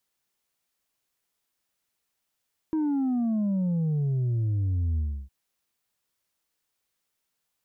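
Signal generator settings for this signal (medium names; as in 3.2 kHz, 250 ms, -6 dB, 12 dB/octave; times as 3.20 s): sub drop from 320 Hz, over 2.56 s, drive 3 dB, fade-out 0.31 s, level -23.5 dB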